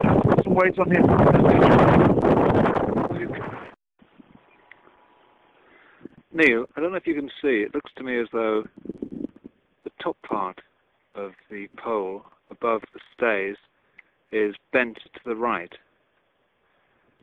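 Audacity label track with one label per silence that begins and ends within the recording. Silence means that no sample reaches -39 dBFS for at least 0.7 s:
4.870000	6.050000	silence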